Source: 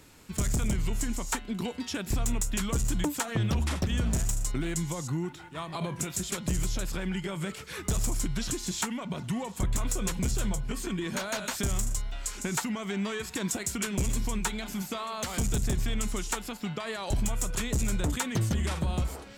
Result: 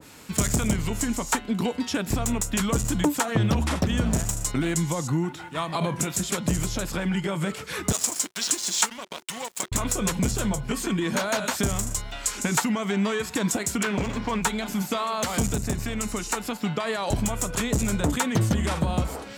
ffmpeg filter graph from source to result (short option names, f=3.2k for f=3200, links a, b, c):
-filter_complex "[0:a]asettb=1/sr,asplit=3[a][b][c];[a]atrim=end=7.924[d];[b]atrim=start=7.92:end=9.72,asetpts=PTS-STARTPTS,afade=t=in:d=0.004:c=qsin,afade=t=out:st=1.796:d=0.004:c=qsin,highpass=200,lowpass=6.2k,aemphasis=mode=production:type=riaa,aeval=exprs='sgn(val(0))*max(abs(val(0))-0.00944,0)':c=same[e];[c]atrim=start=9.716[f];[d][e]acrossfade=d=0.004:c1=hsin:c2=qsin[g];[g][f]acrossfade=d=0.004:c1=qsin:c2=hsin,asettb=1/sr,asplit=3[h][i][j];[h]atrim=end=13.834[k];[i]atrim=start=13.83:end=14.42,asetpts=PTS-STARTPTS,afade=t=in:d=0.004:c=qsin,afade=t=out:st=0.586:d=0.004:c=qsin,asplit=2[l][m];[m]highpass=f=720:p=1,volume=13dB,asoftclip=type=tanh:threshold=-21dB[n];[l][n]amix=inputs=2:normalize=0,lowpass=f=3.3k:p=1,volume=-6dB,adynamicsmooth=sensitivity=6.5:basefreq=2.3k[o];[j]atrim=start=14.416[p];[k][o]acrossfade=d=0.004:c1=hsin:c2=qsin[q];[q][p]acrossfade=d=0.004:c1=qsin:c2=hsin,asettb=1/sr,asplit=3[r][s][t];[r]atrim=end=15.534[u];[s]atrim=start=15.53:end=16.44,asetpts=PTS-STARTPTS,afade=t=in:d=0.004:c=qsin,afade=t=out:st=0.906:d=0.004:c=qsin,bandreject=f=3.3k:w=7.9,acompressor=threshold=-32dB:ratio=1.5:attack=3.2:release=140:knee=1:detection=peak[v];[t]atrim=start=16.436[w];[u][v]acrossfade=d=0.004:c1=hsin:c2=qsin[x];[x][w]acrossfade=d=0.004:c1=qsin:c2=hsin,highpass=f=150:p=1,bandreject=f=370:w=12,adynamicequalizer=threshold=0.00398:dfrequency=1500:dqfactor=0.7:tfrequency=1500:tqfactor=0.7:attack=5:release=100:ratio=0.375:range=2.5:mode=cutabove:tftype=highshelf,volume=9dB"